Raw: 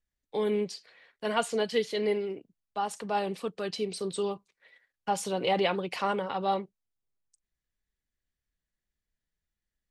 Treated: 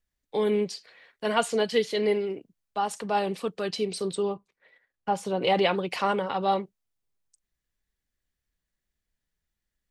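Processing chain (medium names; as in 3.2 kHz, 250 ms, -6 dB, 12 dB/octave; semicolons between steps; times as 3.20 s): 4.15–5.42 s: treble shelf 2.3 kHz -11 dB; trim +3.5 dB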